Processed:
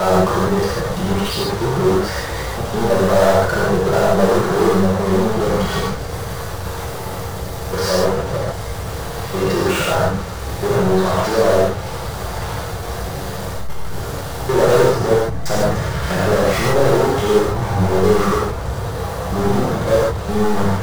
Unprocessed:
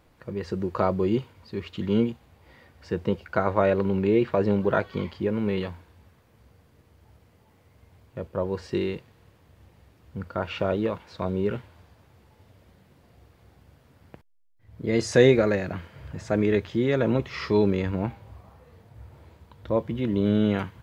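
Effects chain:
slices reordered back to front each 161 ms, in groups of 6
treble cut that deepens with the level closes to 1,000 Hz, closed at −21.5 dBFS
power curve on the samples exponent 0.35
graphic EQ with 15 bands 100 Hz −7 dB, 250 Hz −11 dB, 2,500 Hz −8 dB
reverb whose tail is shaped and stops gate 180 ms flat, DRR −6.5 dB
level −4.5 dB

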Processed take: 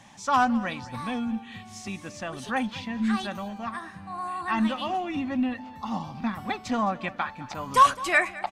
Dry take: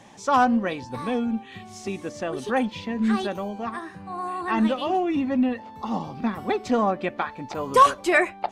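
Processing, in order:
parametric band 420 Hz −15 dB 0.87 octaves
on a send: repeating echo 212 ms, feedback 34%, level −18.5 dB

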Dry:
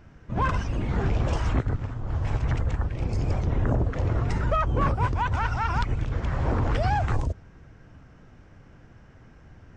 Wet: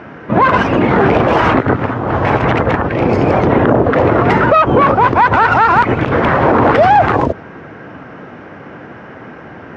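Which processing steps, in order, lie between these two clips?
stylus tracing distortion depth 0.18 ms
band-pass filter 270–2,200 Hz
boost into a limiter +26.5 dB
level −1 dB

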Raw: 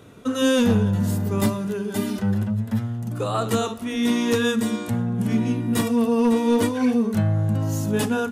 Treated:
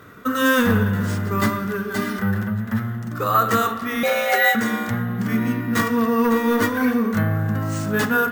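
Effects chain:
flat-topped bell 1,500 Hz +11.5 dB 1.1 octaves
bad sample-rate conversion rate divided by 3×, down none, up hold
0:04.03–0:04.55: frequency shifter +290 Hz
spring reverb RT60 1.9 s, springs 31/52 ms, chirp 45 ms, DRR 9 dB

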